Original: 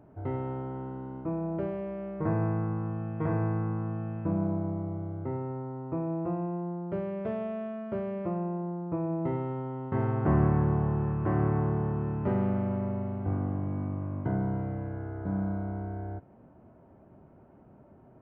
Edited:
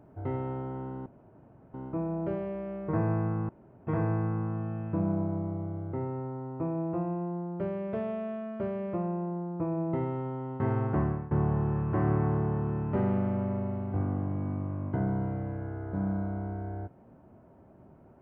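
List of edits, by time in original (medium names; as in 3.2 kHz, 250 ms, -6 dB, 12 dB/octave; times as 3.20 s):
1.06 s: insert room tone 0.68 s
2.81–3.19 s: room tone
10.14–10.63 s: fade out, to -22.5 dB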